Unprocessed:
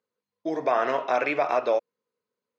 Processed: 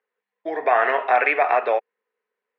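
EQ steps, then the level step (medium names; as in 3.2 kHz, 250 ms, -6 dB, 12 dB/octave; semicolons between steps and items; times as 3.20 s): cabinet simulation 190–2500 Hz, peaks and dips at 200 Hz +6 dB, 420 Hz +9 dB, 760 Hz +9 dB, 1.8 kHz +8 dB; tilt EQ +5 dB/octave; +2.0 dB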